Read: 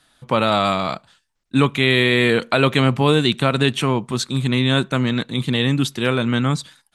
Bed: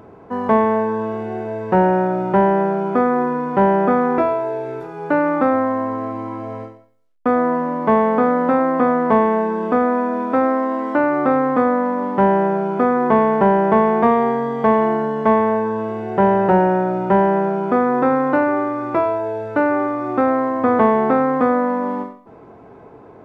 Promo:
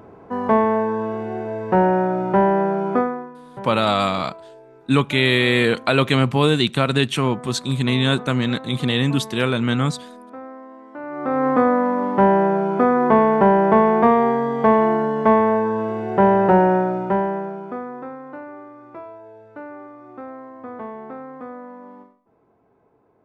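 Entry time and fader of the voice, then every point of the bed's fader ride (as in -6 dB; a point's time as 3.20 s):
3.35 s, -1.0 dB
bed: 2.98 s -1.5 dB
3.33 s -20 dB
10.92 s -20 dB
11.47 s 0 dB
16.76 s 0 dB
18.18 s -19 dB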